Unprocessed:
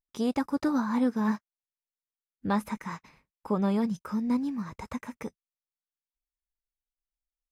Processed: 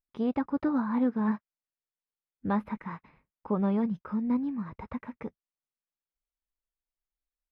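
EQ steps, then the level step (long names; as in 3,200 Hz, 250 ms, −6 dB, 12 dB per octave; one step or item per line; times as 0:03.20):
high-frequency loss of the air 440 metres
0.0 dB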